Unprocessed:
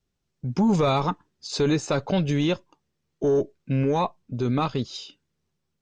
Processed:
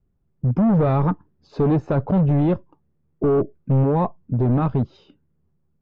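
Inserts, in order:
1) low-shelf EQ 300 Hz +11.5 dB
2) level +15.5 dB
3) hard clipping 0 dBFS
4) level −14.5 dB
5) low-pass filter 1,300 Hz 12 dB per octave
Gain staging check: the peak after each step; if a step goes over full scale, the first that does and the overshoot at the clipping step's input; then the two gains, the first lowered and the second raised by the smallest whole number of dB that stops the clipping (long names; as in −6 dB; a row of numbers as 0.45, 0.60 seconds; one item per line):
−6.5, +9.0, 0.0, −14.5, −14.0 dBFS
step 2, 9.0 dB
step 2 +6.5 dB, step 4 −5.5 dB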